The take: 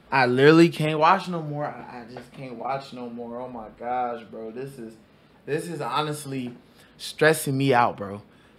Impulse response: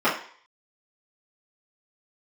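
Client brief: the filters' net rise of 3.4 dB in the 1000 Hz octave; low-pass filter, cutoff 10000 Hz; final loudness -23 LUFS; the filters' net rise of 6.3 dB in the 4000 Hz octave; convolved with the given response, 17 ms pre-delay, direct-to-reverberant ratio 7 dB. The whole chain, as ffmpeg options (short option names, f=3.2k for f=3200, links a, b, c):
-filter_complex "[0:a]lowpass=10k,equalizer=f=1k:t=o:g=4,equalizer=f=4k:t=o:g=7.5,asplit=2[a][b];[1:a]atrim=start_sample=2205,adelay=17[c];[b][c]afir=irnorm=-1:irlink=0,volume=-25dB[d];[a][d]amix=inputs=2:normalize=0,volume=-2.5dB"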